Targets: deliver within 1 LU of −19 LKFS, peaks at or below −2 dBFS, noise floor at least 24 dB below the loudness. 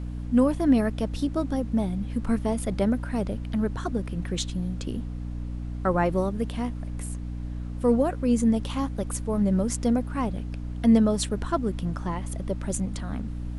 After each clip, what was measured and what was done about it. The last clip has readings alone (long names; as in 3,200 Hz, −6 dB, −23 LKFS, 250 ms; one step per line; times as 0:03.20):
mains hum 60 Hz; hum harmonics up to 300 Hz; level of the hum −30 dBFS; background noise floor −34 dBFS; target noise floor −51 dBFS; integrated loudness −27.0 LKFS; sample peak −9.5 dBFS; target loudness −19.0 LKFS
→ mains-hum notches 60/120/180/240/300 Hz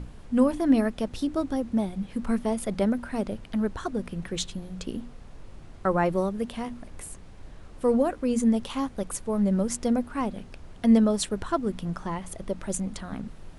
mains hum none found; background noise floor −46 dBFS; target noise floor −52 dBFS
→ noise reduction from a noise print 6 dB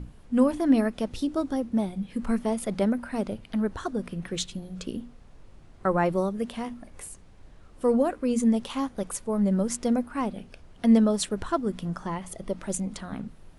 background noise floor −51 dBFS; target noise floor −52 dBFS
→ noise reduction from a noise print 6 dB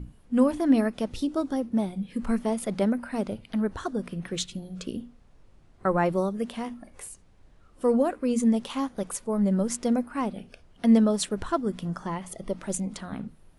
background noise floor −56 dBFS; integrated loudness −27.5 LKFS; sample peak −9.5 dBFS; target loudness −19.0 LKFS
→ level +8.5 dB
brickwall limiter −2 dBFS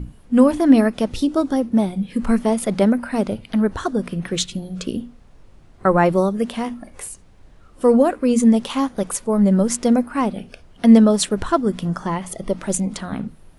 integrated loudness −19.0 LKFS; sample peak −2.0 dBFS; background noise floor −48 dBFS